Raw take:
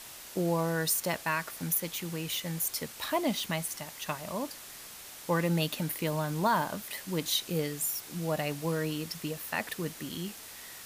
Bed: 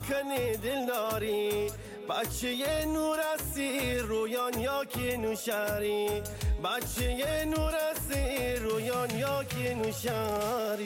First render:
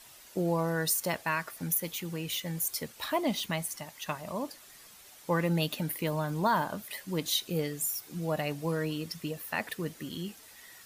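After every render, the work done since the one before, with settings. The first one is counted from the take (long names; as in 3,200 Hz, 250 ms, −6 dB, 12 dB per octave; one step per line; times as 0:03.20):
broadband denoise 9 dB, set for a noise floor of −47 dBFS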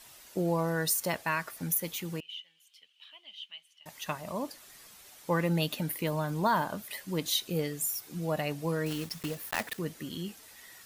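0:02.20–0:03.86: resonant band-pass 3,000 Hz, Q 12
0:08.86–0:09.81: one scale factor per block 3 bits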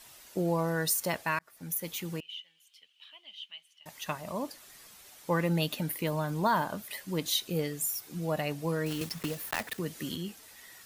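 0:01.39–0:01.97: fade in
0:09.01–0:10.16: multiband upward and downward compressor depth 70%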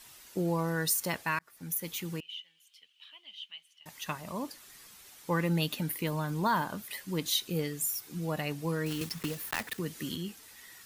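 parametric band 630 Hz −6 dB 0.61 octaves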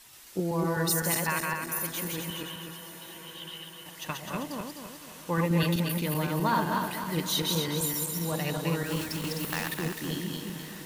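feedback delay that plays each chunk backwards 128 ms, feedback 65%, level −1.5 dB
feedback delay with all-pass diffusion 1,061 ms, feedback 61%, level −15 dB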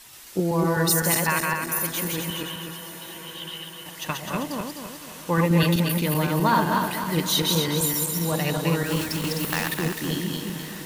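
level +6 dB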